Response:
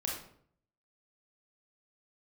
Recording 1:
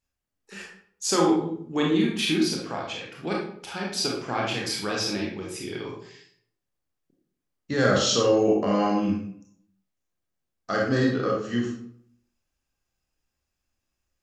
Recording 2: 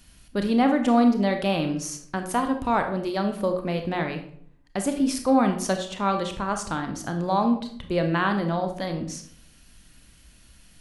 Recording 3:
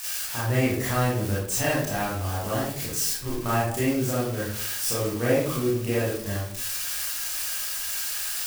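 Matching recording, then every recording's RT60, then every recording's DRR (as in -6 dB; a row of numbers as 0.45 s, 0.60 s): 1; 0.60 s, 0.60 s, 0.60 s; -2.5 dB, 5.5 dB, -8.5 dB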